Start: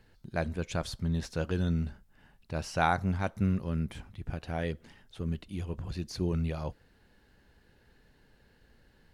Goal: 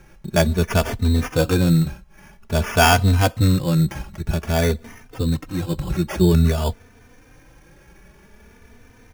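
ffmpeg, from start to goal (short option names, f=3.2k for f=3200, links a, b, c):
-filter_complex "[0:a]acrusher=samples=11:mix=1:aa=0.000001,apsyclip=18dB,asplit=2[a][b];[b]adelay=3.2,afreqshift=0.51[c];[a][c]amix=inputs=2:normalize=1,volume=-1dB"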